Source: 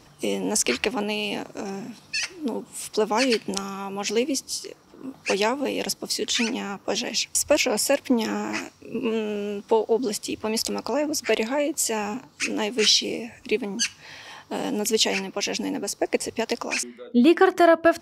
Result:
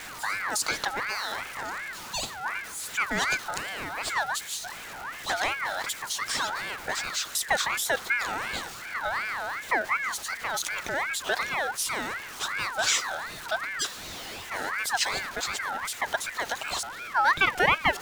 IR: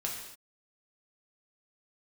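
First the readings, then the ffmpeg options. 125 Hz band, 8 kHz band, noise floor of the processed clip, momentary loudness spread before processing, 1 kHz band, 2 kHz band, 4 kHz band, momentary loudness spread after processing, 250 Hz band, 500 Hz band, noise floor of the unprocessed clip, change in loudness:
−6.5 dB, −4.5 dB, −41 dBFS, 13 LU, +0.5 dB, +3.5 dB, −5.0 dB, 9 LU, −19.0 dB, −13.0 dB, −54 dBFS, −4.0 dB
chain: -af "aeval=exprs='val(0)+0.5*0.0376*sgn(val(0))':channel_layout=same,aeval=exprs='val(0)*sin(2*PI*1500*n/s+1500*0.3/2.7*sin(2*PI*2.7*n/s))':channel_layout=same,volume=-4dB"

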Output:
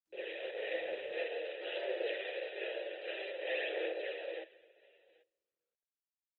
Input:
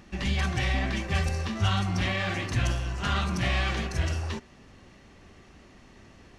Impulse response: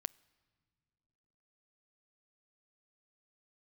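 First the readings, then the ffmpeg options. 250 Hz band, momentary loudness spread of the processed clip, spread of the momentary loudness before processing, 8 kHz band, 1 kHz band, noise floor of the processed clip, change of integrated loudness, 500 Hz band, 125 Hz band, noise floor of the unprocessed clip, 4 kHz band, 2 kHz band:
−20.5 dB, 6 LU, 4 LU, below −40 dB, −17.5 dB, below −85 dBFS, −11.0 dB, +1.0 dB, below −40 dB, −54 dBFS, −12.0 dB, −10.0 dB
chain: -filter_complex "[0:a]aresample=11025,acrusher=bits=5:mix=0:aa=0.000001,aresample=44100,aecho=1:1:787:0.075,asplit=2[link_01][link_02];[1:a]atrim=start_sample=2205,lowshelf=frequency=120:gain=-9,adelay=48[link_03];[link_02][link_03]afir=irnorm=-1:irlink=0,volume=8dB[link_04];[link_01][link_04]amix=inputs=2:normalize=0,aphaser=in_gain=1:out_gain=1:delay=4:decay=0.44:speed=0.52:type=sinusoidal,aeval=exprs='abs(val(0))':channel_layout=same,asplit=3[link_05][link_06][link_07];[link_05]bandpass=frequency=530:width_type=q:width=8,volume=0dB[link_08];[link_06]bandpass=frequency=1840:width_type=q:width=8,volume=-6dB[link_09];[link_07]bandpass=frequency=2480:width_type=q:width=8,volume=-9dB[link_10];[link_08][link_09][link_10]amix=inputs=3:normalize=0,equalizer=frequency=1400:width=0.59:gain=-11.5,bandreject=frequency=1100:width=28,adynamicequalizer=threshold=0.002:dfrequency=740:dqfactor=0.8:tfrequency=740:tqfactor=0.8:attack=5:release=100:ratio=0.375:range=2:mode=boostabove:tftype=bell,afftfilt=real='re*between(b*sr/4096,320,4000)':imag='im*between(b*sr/4096,320,4000)':win_size=4096:overlap=0.75,volume=3dB" -ar 48000 -c:a libopus -b:a 20k

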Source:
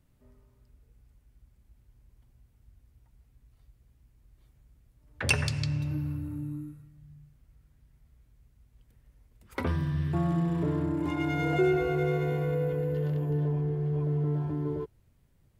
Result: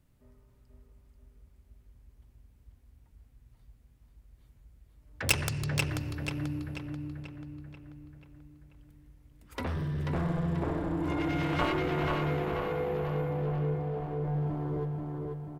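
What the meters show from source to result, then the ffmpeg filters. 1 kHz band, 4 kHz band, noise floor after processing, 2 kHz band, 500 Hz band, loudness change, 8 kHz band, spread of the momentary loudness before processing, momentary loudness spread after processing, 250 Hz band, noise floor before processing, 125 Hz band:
+2.5 dB, +1.5 dB, −62 dBFS, −0.5 dB, −2.5 dB, −2.5 dB, +3.5 dB, 10 LU, 15 LU, −2.5 dB, −66 dBFS, −3.0 dB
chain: -filter_complex "[0:a]aeval=exprs='0.376*(cos(1*acos(clip(val(0)/0.376,-1,1)))-cos(1*PI/2))+0.106*(cos(7*acos(clip(val(0)/0.376,-1,1)))-cos(7*PI/2))':channel_layout=same,asplit=2[link_01][link_02];[link_02]adelay=487,lowpass=frequency=4500:poles=1,volume=-3dB,asplit=2[link_03][link_04];[link_04]adelay=487,lowpass=frequency=4500:poles=1,volume=0.53,asplit=2[link_05][link_06];[link_06]adelay=487,lowpass=frequency=4500:poles=1,volume=0.53,asplit=2[link_07][link_08];[link_08]adelay=487,lowpass=frequency=4500:poles=1,volume=0.53,asplit=2[link_09][link_10];[link_10]adelay=487,lowpass=frequency=4500:poles=1,volume=0.53,asplit=2[link_11][link_12];[link_12]adelay=487,lowpass=frequency=4500:poles=1,volume=0.53,asplit=2[link_13][link_14];[link_14]adelay=487,lowpass=frequency=4500:poles=1,volume=0.53[link_15];[link_01][link_03][link_05][link_07][link_09][link_11][link_13][link_15]amix=inputs=8:normalize=0"

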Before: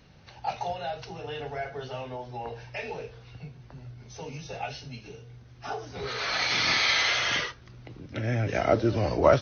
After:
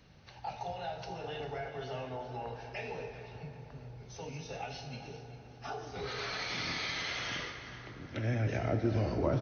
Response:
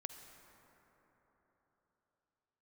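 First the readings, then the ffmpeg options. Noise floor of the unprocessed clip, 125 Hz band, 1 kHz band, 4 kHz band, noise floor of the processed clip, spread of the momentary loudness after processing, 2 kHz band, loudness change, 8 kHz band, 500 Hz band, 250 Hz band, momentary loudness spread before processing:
−51 dBFS, −3.0 dB, −9.0 dB, −11.5 dB, −53 dBFS, 15 LU, −11.0 dB, −9.5 dB, can't be measured, −9.5 dB, −5.0 dB, 23 LU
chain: -filter_complex "[0:a]acrossover=split=350[link_01][link_02];[link_02]acompressor=threshold=-34dB:ratio=3[link_03];[link_01][link_03]amix=inputs=2:normalize=0,aecho=1:1:395|790|1185:0.168|0.0571|0.0194[link_04];[1:a]atrim=start_sample=2205[link_05];[link_04][link_05]afir=irnorm=-1:irlink=0"

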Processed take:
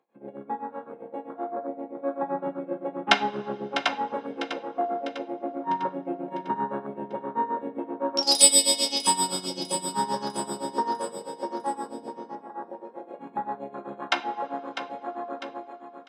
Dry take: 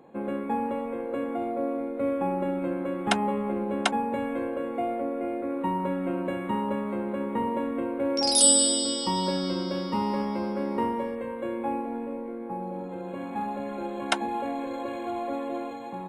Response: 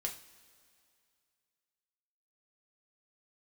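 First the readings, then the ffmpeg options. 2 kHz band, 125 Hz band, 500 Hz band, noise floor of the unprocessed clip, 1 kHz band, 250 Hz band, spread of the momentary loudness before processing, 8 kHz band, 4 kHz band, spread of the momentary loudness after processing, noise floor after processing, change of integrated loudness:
+4.0 dB, −8.0 dB, −2.5 dB, −36 dBFS, +2.0 dB, −6.5 dB, 8 LU, +1.5 dB, +3.5 dB, 17 LU, −48 dBFS, +1.0 dB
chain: -filter_complex "[0:a]highpass=frequency=1100:poles=1,afwtdn=0.02,highshelf=frequency=9800:gain=-10.5,dynaudnorm=framelen=250:gausssize=11:maxgain=4.5dB,tremolo=f=7.7:d=0.94,aecho=1:1:650|1300|1950|2600|3250:0.316|0.158|0.0791|0.0395|0.0198,asplit=2[link_01][link_02];[1:a]atrim=start_sample=2205,lowpass=6100,adelay=14[link_03];[link_02][link_03]afir=irnorm=-1:irlink=0,volume=-6.5dB[link_04];[link_01][link_04]amix=inputs=2:normalize=0,volume=4.5dB"

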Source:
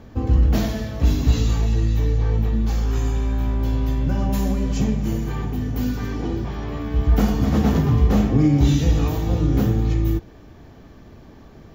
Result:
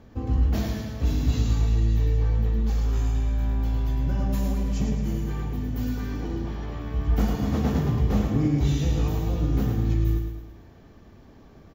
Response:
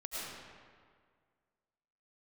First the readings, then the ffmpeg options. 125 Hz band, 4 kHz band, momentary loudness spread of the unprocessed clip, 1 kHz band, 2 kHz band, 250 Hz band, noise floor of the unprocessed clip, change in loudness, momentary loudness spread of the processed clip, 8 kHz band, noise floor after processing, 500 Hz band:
−4.5 dB, −6.0 dB, 8 LU, −6.0 dB, −6.0 dB, −6.0 dB, −45 dBFS, −4.5 dB, 7 LU, −6.0 dB, −50 dBFS, −6.0 dB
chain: -af "aecho=1:1:108|216|324|432|540|648:0.501|0.236|0.111|0.052|0.0245|0.0115,volume=-7dB"

